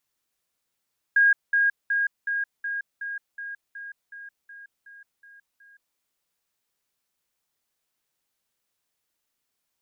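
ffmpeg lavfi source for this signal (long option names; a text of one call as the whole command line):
ffmpeg -f lavfi -i "aevalsrc='pow(10,(-14.5-3*floor(t/0.37))/20)*sin(2*PI*1630*t)*clip(min(mod(t,0.37),0.17-mod(t,0.37))/0.005,0,1)':duration=4.81:sample_rate=44100" out.wav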